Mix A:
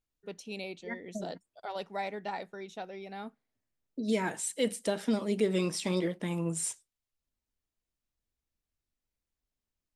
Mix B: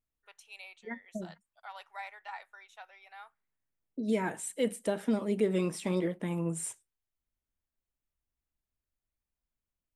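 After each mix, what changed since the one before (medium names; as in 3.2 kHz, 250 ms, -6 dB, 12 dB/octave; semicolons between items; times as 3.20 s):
first voice: add high-pass 940 Hz 24 dB/octave; master: add peaking EQ 4.9 kHz -10.5 dB 1.3 oct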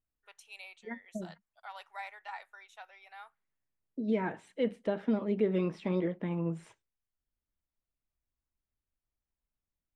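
second voice: add distance through air 260 m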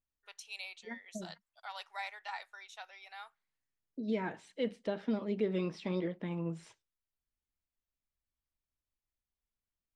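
second voice -4.0 dB; master: add peaking EQ 4.9 kHz +10.5 dB 1.3 oct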